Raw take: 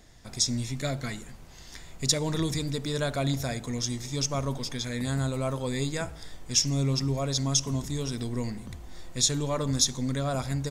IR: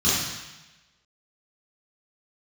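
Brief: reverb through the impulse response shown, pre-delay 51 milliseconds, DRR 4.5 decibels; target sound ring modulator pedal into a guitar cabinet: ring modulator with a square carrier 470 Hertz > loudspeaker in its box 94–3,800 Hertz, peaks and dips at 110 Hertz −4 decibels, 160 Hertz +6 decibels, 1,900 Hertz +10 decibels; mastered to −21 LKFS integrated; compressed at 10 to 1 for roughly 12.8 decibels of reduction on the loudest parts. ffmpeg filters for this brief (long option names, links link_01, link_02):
-filter_complex "[0:a]acompressor=threshold=-32dB:ratio=10,asplit=2[link_01][link_02];[1:a]atrim=start_sample=2205,adelay=51[link_03];[link_02][link_03]afir=irnorm=-1:irlink=0,volume=-20.5dB[link_04];[link_01][link_04]amix=inputs=2:normalize=0,aeval=exprs='val(0)*sgn(sin(2*PI*470*n/s))':channel_layout=same,highpass=94,equalizer=frequency=110:width_type=q:width=4:gain=-4,equalizer=frequency=160:width_type=q:width=4:gain=6,equalizer=frequency=1900:width_type=q:width=4:gain=10,lowpass=frequency=3800:width=0.5412,lowpass=frequency=3800:width=1.3066,volume=12dB"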